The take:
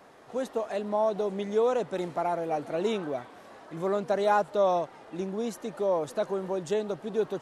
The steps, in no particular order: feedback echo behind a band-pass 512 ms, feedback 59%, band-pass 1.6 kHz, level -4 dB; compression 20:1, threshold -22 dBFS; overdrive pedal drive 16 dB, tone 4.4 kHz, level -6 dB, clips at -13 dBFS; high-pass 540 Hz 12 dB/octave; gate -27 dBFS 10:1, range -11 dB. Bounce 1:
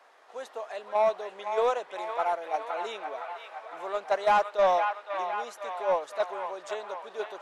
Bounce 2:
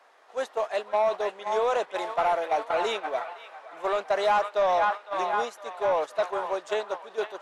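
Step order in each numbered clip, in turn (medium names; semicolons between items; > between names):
high-pass > compression > gate > overdrive pedal > feedback echo behind a band-pass; feedback echo behind a band-pass > compression > high-pass > overdrive pedal > gate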